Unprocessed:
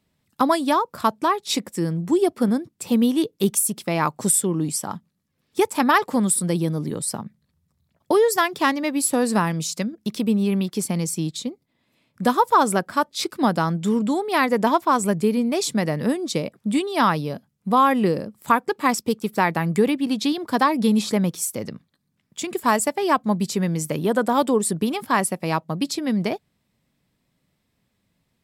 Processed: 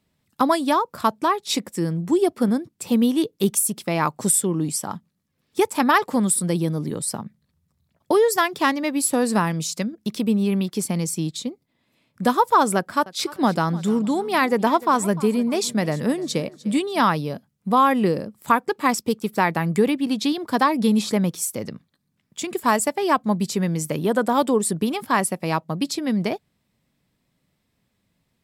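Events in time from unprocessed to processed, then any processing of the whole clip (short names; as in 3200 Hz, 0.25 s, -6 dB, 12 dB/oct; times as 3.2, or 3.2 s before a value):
12.76–17.01 feedback echo 0.3 s, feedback 33%, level -19 dB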